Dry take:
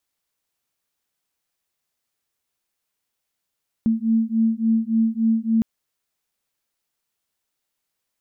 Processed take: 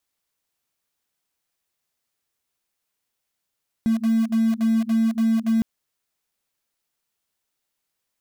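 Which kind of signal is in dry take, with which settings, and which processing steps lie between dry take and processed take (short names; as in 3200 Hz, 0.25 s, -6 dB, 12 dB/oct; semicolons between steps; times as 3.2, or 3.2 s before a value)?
beating tones 223 Hz, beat 3.5 Hz, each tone -20 dBFS 1.76 s
in parallel at -11 dB: bit-crush 4-bit; on the sum: limiter -16 dBFS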